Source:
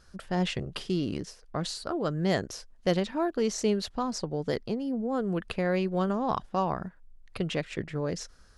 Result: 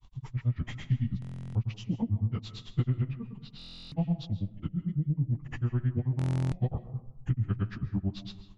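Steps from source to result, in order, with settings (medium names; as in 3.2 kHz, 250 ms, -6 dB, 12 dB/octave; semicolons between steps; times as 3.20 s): frequency-domain pitch shifter -7 st; low-pass that closes with the level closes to 2.7 kHz, closed at -24 dBFS; resonant low shelf 240 Hz +12 dB, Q 1.5; compression, threshold -22 dBFS, peak gain reduction 10.5 dB; granulator 99 ms, grains 9.1 per s, pitch spread up and down by 0 st; reverberation RT60 0.80 s, pre-delay 95 ms, DRR 12.5 dB; buffer glitch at 1.20/3.57/6.17 s, samples 1024, times 14; MP3 64 kbps 24 kHz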